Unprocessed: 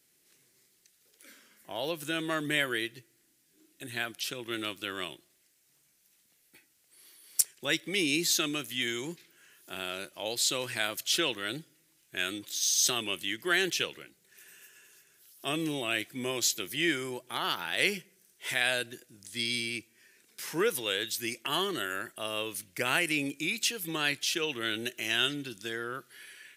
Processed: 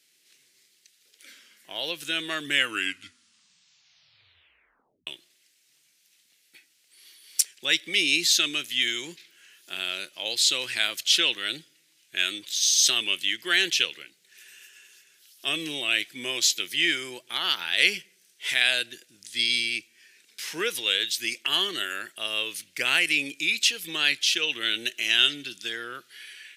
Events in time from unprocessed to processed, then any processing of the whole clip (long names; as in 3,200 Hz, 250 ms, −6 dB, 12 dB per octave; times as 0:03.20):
0:02.41: tape stop 2.66 s
whole clip: meter weighting curve D; level −2.5 dB